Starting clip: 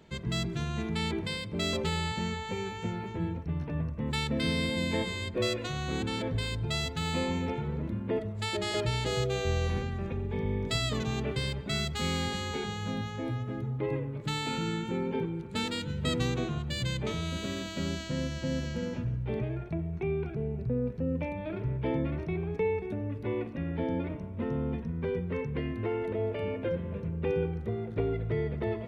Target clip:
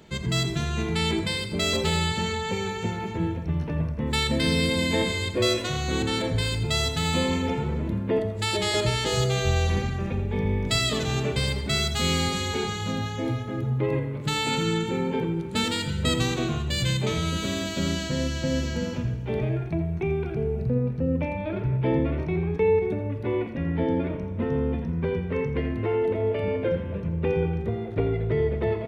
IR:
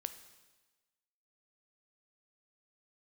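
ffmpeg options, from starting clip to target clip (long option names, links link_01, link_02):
-filter_complex "[0:a]asetnsamples=nb_out_samples=441:pad=0,asendcmd='20.7 highshelf g -2.5',highshelf=frequency=5200:gain=5.5,aecho=1:1:84:0.237[link_01];[1:a]atrim=start_sample=2205[link_02];[link_01][link_02]afir=irnorm=-1:irlink=0,volume=8dB"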